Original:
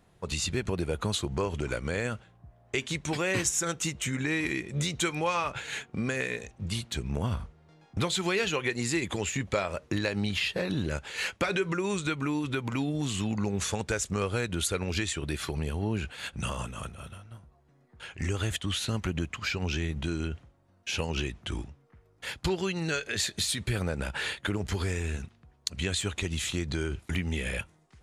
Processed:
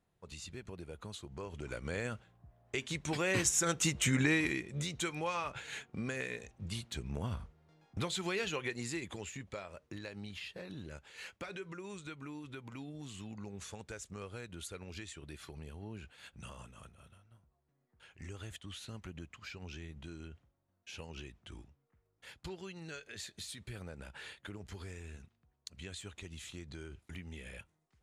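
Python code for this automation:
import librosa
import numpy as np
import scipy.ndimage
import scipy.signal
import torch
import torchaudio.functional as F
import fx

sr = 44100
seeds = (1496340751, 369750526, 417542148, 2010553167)

y = fx.gain(x, sr, db=fx.line((1.28, -16.5), (1.93, -7.0), (2.79, -7.0), (4.2, 2.0), (4.72, -8.0), (8.62, -8.0), (9.62, -16.0)))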